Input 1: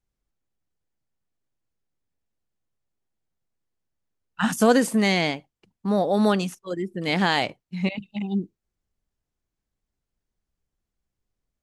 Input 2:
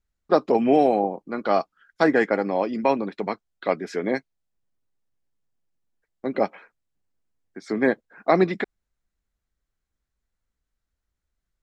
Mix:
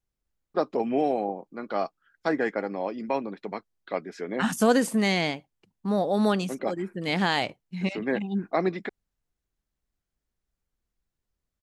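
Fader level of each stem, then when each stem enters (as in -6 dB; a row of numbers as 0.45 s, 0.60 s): -3.0 dB, -7.0 dB; 0.00 s, 0.25 s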